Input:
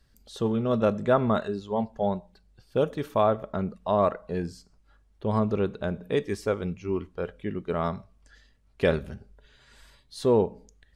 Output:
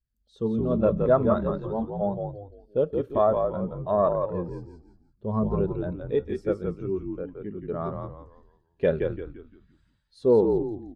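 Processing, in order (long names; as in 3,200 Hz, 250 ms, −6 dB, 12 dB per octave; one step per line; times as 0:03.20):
echo with shifted repeats 171 ms, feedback 49%, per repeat −50 Hz, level −3.5 dB
harmonic generator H 4 −24 dB, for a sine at −8.5 dBFS
every bin expanded away from the loudest bin 1.5 to 1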